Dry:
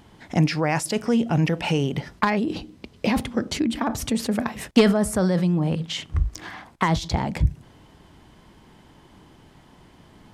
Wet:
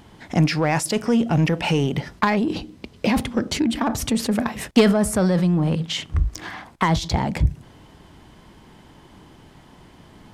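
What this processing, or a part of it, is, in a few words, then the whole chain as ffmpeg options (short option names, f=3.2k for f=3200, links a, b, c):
parallel distortion: -filter_complex "[0:a]asplit=2[a][b];[b]asoftclip=type=hard:threshold=-22.5dB,volume=-6.5dB[c];[a][c]amix=inputs=2:normalize=0"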